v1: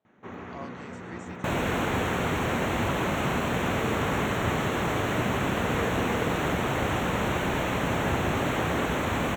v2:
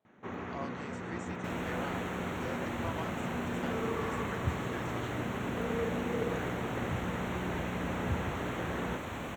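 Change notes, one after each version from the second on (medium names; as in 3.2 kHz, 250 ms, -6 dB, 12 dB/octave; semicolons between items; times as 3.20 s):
second sound -12.0 dB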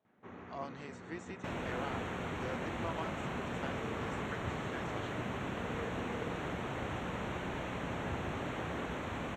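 first sound -9.5 dB; master: add distance through air 54 m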